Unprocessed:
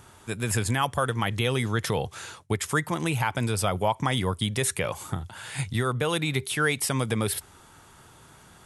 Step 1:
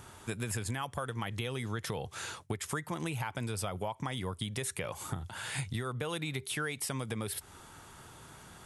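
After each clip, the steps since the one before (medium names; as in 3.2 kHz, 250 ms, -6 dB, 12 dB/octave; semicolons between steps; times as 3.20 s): compression 6:1, threshold -33 dBFS, peak gain reduction 13.5 dB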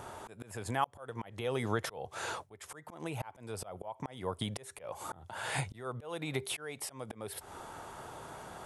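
peaking EQ 650 Hz +13.5 dB 1.9 oct; slow attack 410 ms; trim -1 dB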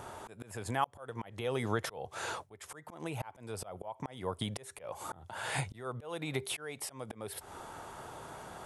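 no audible change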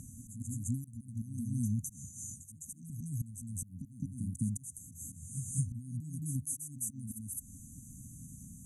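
brick-wall FIR band-stop 280–5900 Hz; reverse echo 210 ms -7 dB; trim +5 dB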